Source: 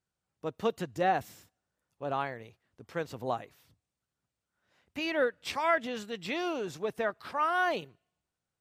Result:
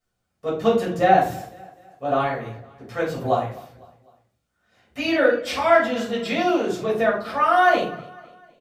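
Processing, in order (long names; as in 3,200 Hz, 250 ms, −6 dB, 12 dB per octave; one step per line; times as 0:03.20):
mains-hum notches 50/100/150 Hz
repeating echo 252 ms, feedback 46%, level −21 dB
rectangular room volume 340 cubic metres, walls furnished, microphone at 6.2 metres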